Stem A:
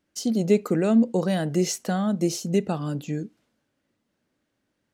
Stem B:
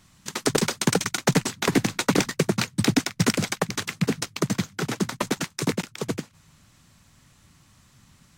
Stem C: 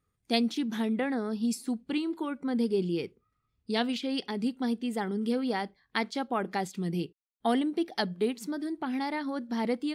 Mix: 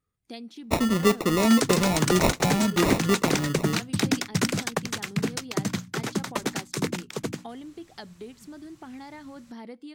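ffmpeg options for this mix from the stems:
ffmpeg -i stem1.wav -i stem2.wav -i stem3.wav -filter_complex "[0:a]highshelf=frequency=3200:gain=12,acrusher=samples=28:mix=1:aa=0.000001,adelay=550,volume=0dB[link_01];[1:a]bandreject=frequency=60:width_type=h:width=6,bandreject=frequency=120:width_type=h:width=6,bandreject=frequency=180:width_type=h:width=6,bandreject=frequency=240:width_type=h:width=6,bandreject=frequency=300:width_type=h:width=6,adelay=1150,volume=-2dB[link_02];[2:a]acompressor=threshold=-38dB:ratio=2.5,volume=-4dB[link_03];[link_01][link_02][link_03]amix=inputs=3:normalize=0,asoftclip=type=tanh:threshold=-8dB" out.wav

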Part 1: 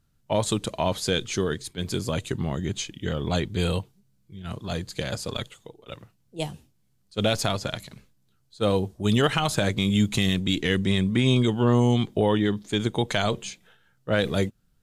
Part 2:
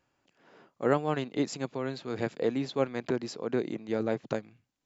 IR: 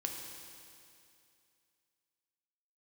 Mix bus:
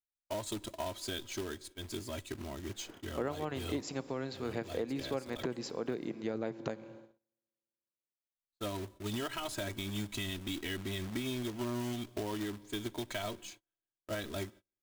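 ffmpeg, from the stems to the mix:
-filter_complex "[0:a]aecho=1:1:3.1:0.99,acrusher=bits=2:mode=log:mix=0:aa=0.000001,volume=-15.5dB,asplit=3[link_01][link_02][link_03];[link_01]atrim=end=6.15,asetpts=PTS-STARTPTS,afade=type=out:start_time=6.146:duration=0.004:curve=hsin[link_04];[link_02]atrim=start=6.15:end=8.37,asetpts=PTS-STARTPTS,volume=0[link_05];[link_03]atrim=start=8.37,asetpts=PTS-STARTPTS,afade=type=in:duration=0.004:curve=hsin[link_06];[link_04][link_05][link_06]concat=n=3:v=0:a=1,asplit=2[link_07][link_08];[link_08]volume=-20.5dB[link_09];[1:a]adelay=2350,volume=-2dB,asplit=2[link_10][link_11];[link_11]volume=-12.5dB[link_12];[2:a]atrim=start_sample=2205[link_13];[link_09][link_12]amix=inputs=2:normalize=0[link_14];[link_14][link_13]afir=irnorm=-1:irlink=0[link_15];[link_07][link_10][link_15]amix=inputs=3:normalize=0,agate=range=-33dB:threshold=-52dB:ratio=16:detection=peak,acompressor=threshold=-33dB:ratio=4"

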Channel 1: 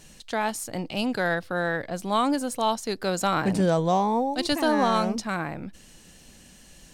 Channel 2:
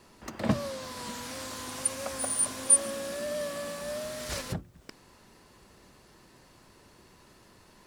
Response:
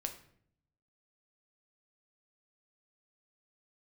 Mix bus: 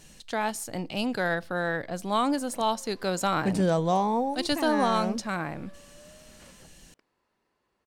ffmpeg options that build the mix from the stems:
-filter_complex "[0:a]volume=-3dB,asplit=3[link_01][link_02][link_03];[link_02]volume=-16dB[link_04];[1:a]bass=frequency=250:gain=-8,treble=frequency=4000:gain=-10,adelay=2100,volume=-17dB[link_05];[link_03]apad=whole_len=439255[link_06];[link_05][link_06]sidechaincompress=threshold=-29dB:ratio=8:attack=16:release=110[link_07];[2:a]atrim=start_sample=2205[link_08];[link_04][link_08]afir=irnorm=-1:irlink=0[link_09];[link_01][link_07][link_09]amix=inputs=3:normalize=0"

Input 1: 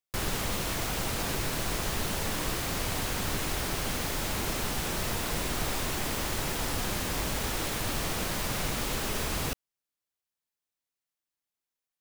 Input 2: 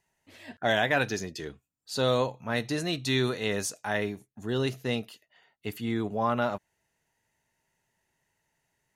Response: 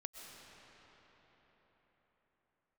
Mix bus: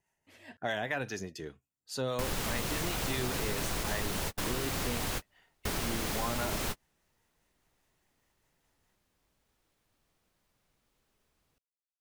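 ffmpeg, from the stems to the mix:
-filter_complex "[0:a]adelay=2050,volume=1dB[link_01];[1:a]equalizer=frequency=4000:width_type=o:width=0.39:gain=-5,acrossover=split=660[link_02][link_03];[link_02]aeval=exprs='val(0)*(1-0.5/2+0.5/2*cos(2*PI*4.9*n/s))':channel_layout=same[link_04];[link_03]aeval=exprs='val(0)*(1-0.5/2-0.5/2*cos(2*PI*4.9*n/s))':channel_layout=same[link_05];[link_04][link_05]amix=inputs=2:normalize=0,volume=-2.5dB,asplit=2[link_06][link_07];[link_07]apad=whole_len=619706[link_08];[link_01][link_08]sidechaingate=range=-46dB:threshold=-56dB:ratio=16:detection=peak[link_09];[link_09][link_06]amix=inputs=2:normalize=0,acompressor=threshold=-31dB:ratio=2.5"

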